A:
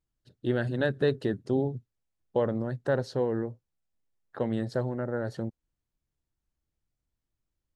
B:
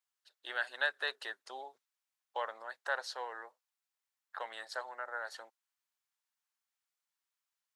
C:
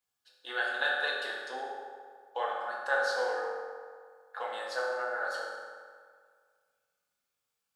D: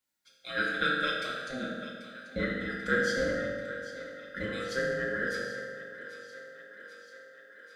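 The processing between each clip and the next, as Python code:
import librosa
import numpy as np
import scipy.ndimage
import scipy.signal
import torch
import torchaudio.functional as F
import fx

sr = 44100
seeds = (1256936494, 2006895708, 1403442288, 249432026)

y1 = scipy.signal.sosfilt(scipy.signal.butter(4, 890.0, 'highpass', fs=sr, output='sos'), x)
y1 = y1 * 10.0 ** (2.5 / 20.0)
y2 = fx.low_shelf(y1, sr, hz=280.0, db=8.5)
y2 = fx.notch(y2, sr, hz=1900.0, q=17.0)
y2 = fx.rev_fdn(y2, sr, rt60_s=1.9, lf_ratio=0.8, hf_ratio=0.6, size_ms=12.0, drr_db=-5.0)
y3 = fx.band_invert(y2, sr, width_hz=1000)
y3 = fx.echo_thinned(y3, sr, ms=788, feedback_pct=69, hz=310.0, wet_db=-14.0)
y3 = y3 * 10.0 ** (1.5 / 20.0)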